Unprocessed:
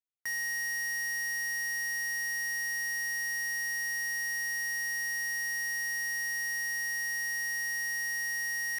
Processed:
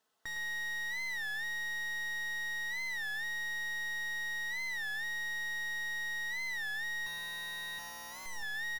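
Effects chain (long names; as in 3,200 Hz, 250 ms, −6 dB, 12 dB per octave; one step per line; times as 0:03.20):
stylus tracing distortion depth 0.23 ms
0:07.06–0:08.27: EQ curve with evenly spaced ripples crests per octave 1.5, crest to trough 15 dB
0:07.78–0:08.45: gain on a spectral selection 900–4,800 Hz −12 dB
parametric band 2,300 Hz −14.5 dB 0.31 octaves
comb filter 4.6 ms, depth 49%
mid-hump overdrive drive 35 dB, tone 1,200 Hz, clips at −29 dBFS
single-tap delay 109 ms −8.5 dB
on a send at −19 dB: convolution reverb RT60 0.95 s, pre-delay 4 ms
on the sum: wow of a warped record 33 1/3 rpm, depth 160 cents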